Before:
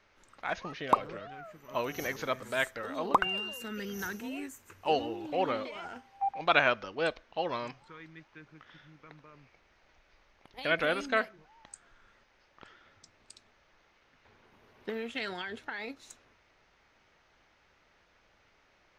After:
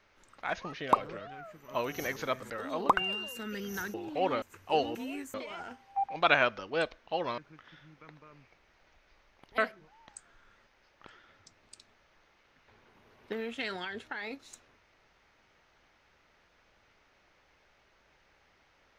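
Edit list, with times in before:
0:02.50–0:02.75: remove
0:04.19–0:04.58: swap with 0:05.11–0:05.59
0:07.63–0:08.40: remove
0:10.60–0:11.15: remove

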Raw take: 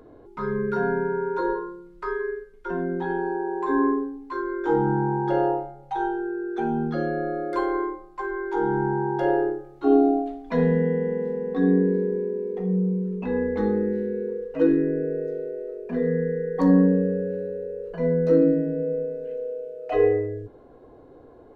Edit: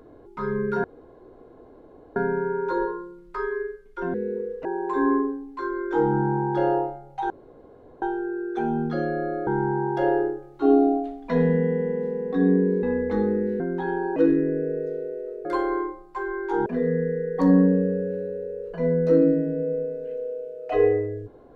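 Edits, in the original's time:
0:00.84: splice in room tone 1.32 s
0:02.82–0:03.38: swap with 0:14.06–0:14.57
0:06.03: splice in room tone 0.72 s
0:07.48–0:08.69: move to 0:15.86
0:12.05–0:13.29: remove

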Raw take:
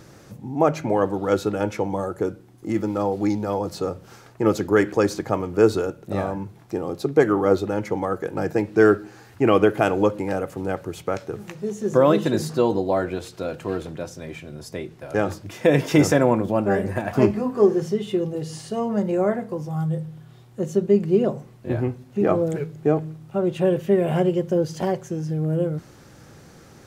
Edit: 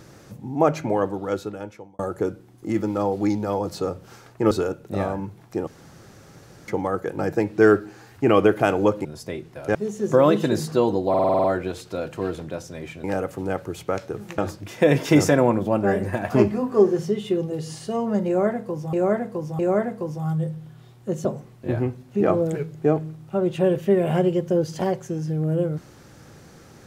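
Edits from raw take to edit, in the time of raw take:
0:00.76–0:01.99: fade out
0:04.51–0:05.69: remove
0:06.85–0:07.86: fill with room tone
0:10.23–0:11.57: swap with 0:14.51–0:15.21
0:12.91: stutter 0.05 s, 8 plays
0:19.10–0:19.76: repeat, 3 plays
0:20.76–0:21.26: remove

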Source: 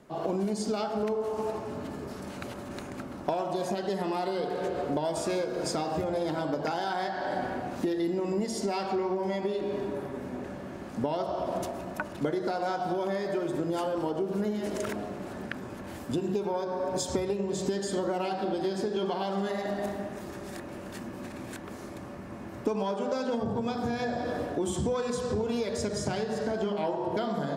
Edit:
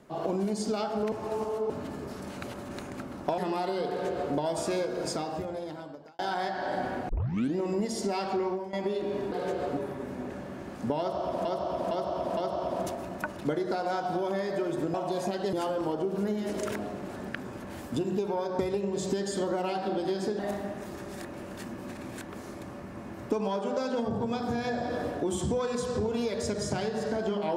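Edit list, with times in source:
0:01.12–0:01.70: reverse
0:03.38–0:03.97: move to 0:13.70
0:04.48–0:04.93: duplicate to 0:09.91
0:05.50–0:06.78: fade out
0:07.68: tape start 0.47 s
0:09.07–0:09.32: fade out, to −15.5 dB
0:11.13–0:11.59: repeat, 4 plays
0:16.76–0:17.15: remove
0:18.95–0:19.74: remove

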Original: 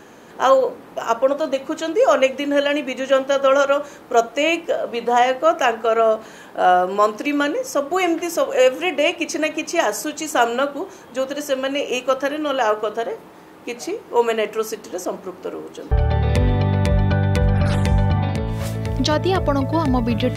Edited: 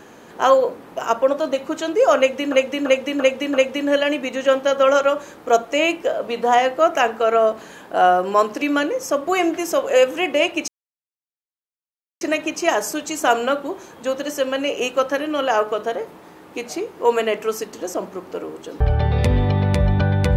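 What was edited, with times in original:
0:02.18–0:02.52: repeat, 5 plays
0:09.32: splice in silence 1.53 s

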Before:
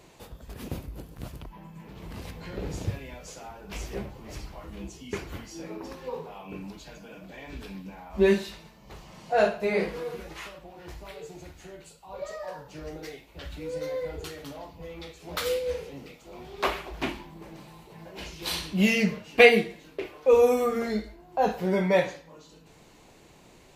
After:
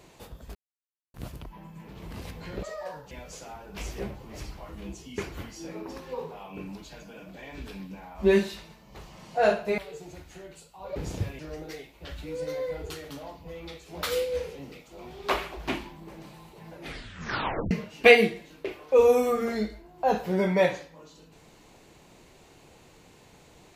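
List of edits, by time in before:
0:00.55–0:01.14: silence
0:02.63–0:03.06: swap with 0:12.25–0:12.73
0:09.73–0:11.07: remove
0:18.04: tape stop 1.01 s

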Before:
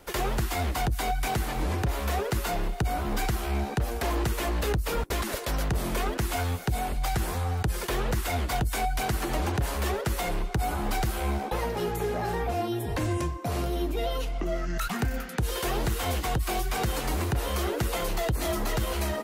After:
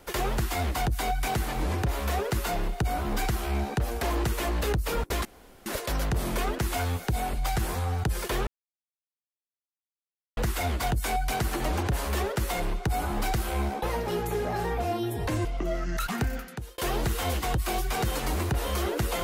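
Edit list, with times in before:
0:05.25: splice in room tone 0.41 s
0:08.06: splice in silence 1.90 s
0:13.14–0:14.26: remove
0:15.07–0:15.59: fade out

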